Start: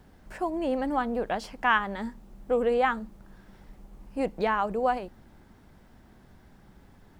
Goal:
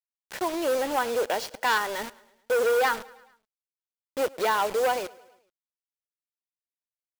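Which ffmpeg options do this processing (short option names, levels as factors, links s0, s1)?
-af "equalizer=f=1100:t=o:w=1.1:g=-4,aecho=1:1:2.1:0.35,aresample=16000,asoftclip=type=hard:threshold=0.0562,aresample=44100,highpass=440,acrusher=bits=6:mix=0:aa=0.000001,aecho=1:1:107|214|321|428:0.0708|0.0411|0.0238|0.0138,volume=2.11"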